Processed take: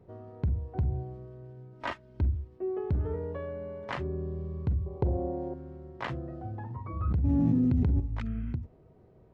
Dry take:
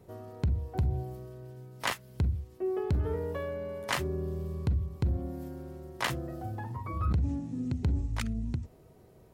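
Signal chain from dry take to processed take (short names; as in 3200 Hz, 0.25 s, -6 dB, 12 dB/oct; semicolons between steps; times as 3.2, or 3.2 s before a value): 1.73–2.48 comb 3.2 ms; 4.86–5.54 band shelf 590 Hz +13 dB; 8.3–8.51 spectral repair 1100–3300 Hz; tape spacing loss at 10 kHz 33 dB; 7.24–8 fast leveller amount 100%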